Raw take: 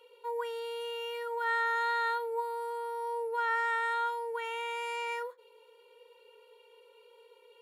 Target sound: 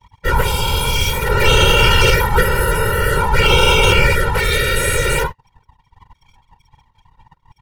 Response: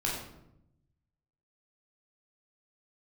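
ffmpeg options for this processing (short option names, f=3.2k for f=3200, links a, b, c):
-af "asuperstop=centerf=2400:order=12:qfactor=6.7,aemphasis=mode=production:type=75kf,aecho=1:1:6.5:0.96,bandreject=f=350.8:t=h:w=4,bandreject=f=701.6:t=h:w=4,bandreject=f=1.0524k:t=h:w=4,bandreject=f=1.4032k:t=h:w=4,anlmdn=0.158,aeval=exprs='abs(val(0))':c=same,afftfilt=real='hypot(re,im)*cos(2*PI*random(0))':imag='hypot(re,im)*sin(2*PI*random(1))':win_size=512:overlap=0.75,alimiter=level_in=23dB:limit=-1dB:release=50:level=0:latency=1,volume=-1dB"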